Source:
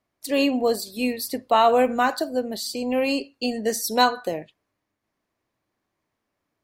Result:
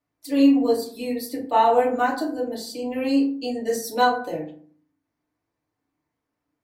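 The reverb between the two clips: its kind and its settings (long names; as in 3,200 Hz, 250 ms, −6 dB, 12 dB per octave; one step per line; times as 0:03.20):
feedback delay network reverb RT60 0.49 s, low-frequency decay 1.4×, high-frequency decay 0.45×, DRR −4.5 dB
level −9 dB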